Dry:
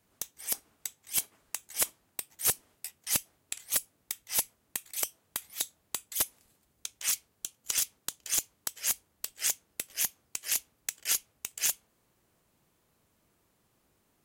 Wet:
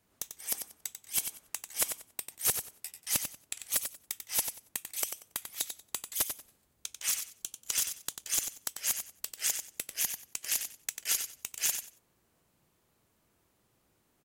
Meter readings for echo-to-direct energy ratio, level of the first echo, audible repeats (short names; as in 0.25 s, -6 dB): -8.0 dB, -8.0 dB, 2